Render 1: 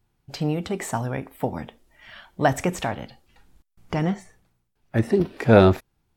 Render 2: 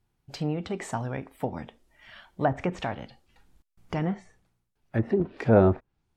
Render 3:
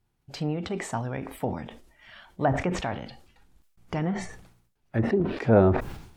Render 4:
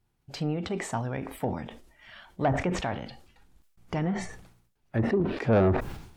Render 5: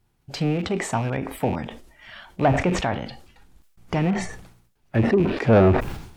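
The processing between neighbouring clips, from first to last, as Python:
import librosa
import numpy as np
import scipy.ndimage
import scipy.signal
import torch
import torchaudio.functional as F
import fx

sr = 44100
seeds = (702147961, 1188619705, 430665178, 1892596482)

y1 = fx.env_lowpass_down(x, sr, base_hz=1200.0, full_db=-16.0)
y1 = F.gain(torch.from_numpy(y1), -4.5).numpy()
y2 = fx.sustainer(y1, sr, db_per_s=76.0)
y3 = 10.0 ** (-15.5 / 20.0) * np.tanh(y2 / 10.0 ** (-15.5 / 20.0))
y4 = fx.rattle_buzz(y3, sr, strikes_db=-34.0, level_db=-35.0)
y4 = F.gain(torch.from_numpy(y4), 6.5).numpy()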